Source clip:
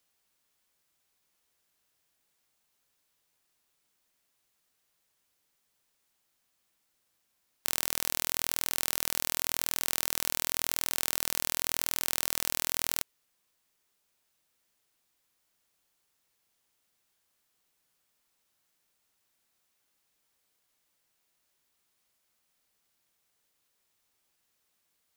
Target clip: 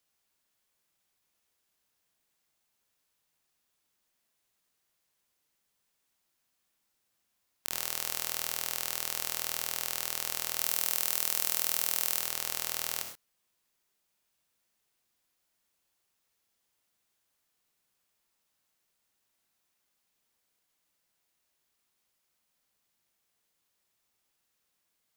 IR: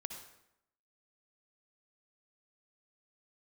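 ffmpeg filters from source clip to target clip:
-filter_complex "[0:a]asettb=1/sr,asplit=3[a][b][c];[a]atrim=end=10.594[d];[b]atrim=start=10.59:end=12.2,asetpts=PTS-STARTPTS,afade=t=in:d=0.004:c=qsin,afade=t=out:st=1.606:d=0.004:c=qsin,highshelf=f=6.5k:g=5.5[e];[c]atrim=start=12.196[f];[d][e]acrossfade=d=0.004:c1=hsin:c2=qsin[g];[g][f]acrossfade=d=0.004:c1=qsin:c2=hsin[h];[1:a]atrim=start_sample=2205,atrim=end_sample=6174[i];[h][i]afir=irnorm=-1:irlink=0"

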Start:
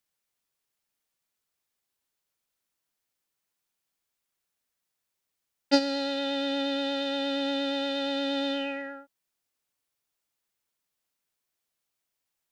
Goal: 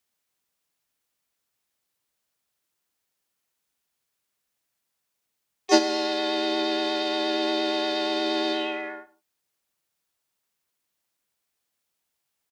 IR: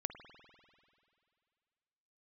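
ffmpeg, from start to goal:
-filter_complex "[0:a]asplit=3[a][b][c];[b]asetrate=29433,aresample=44100,atempo=1.49831,volume=-14dB[d];[c]asetrate=55563,aresample=44100,atempo=0.793701,volume=-5dB[e];[a][d][e]amix=inputs=3:normalize=0,afreqshift=45,asplit=2[f][g];[1:a]atrim=start_sample=2205,afade=t=out:st=0.2:d=0.01,atrim=end_sample=9261[h];[g][h]afir=irnorm=-1:irlink=0,volume=-2dB[i];[f][i]amix=inputs=2:normalize=0,volume=-2dB"

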